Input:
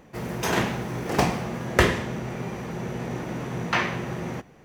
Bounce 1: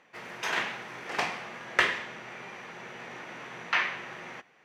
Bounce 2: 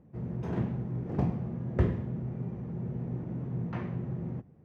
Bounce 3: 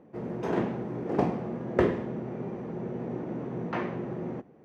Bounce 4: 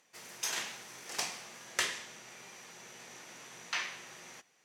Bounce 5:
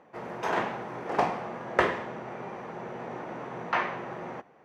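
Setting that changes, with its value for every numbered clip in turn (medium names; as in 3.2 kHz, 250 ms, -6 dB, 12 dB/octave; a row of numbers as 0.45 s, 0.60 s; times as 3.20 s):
band-pass filter, frequency: 2.2 kHz, 110 Hz, 330 Hz, 6.9 kHz, 870 Hz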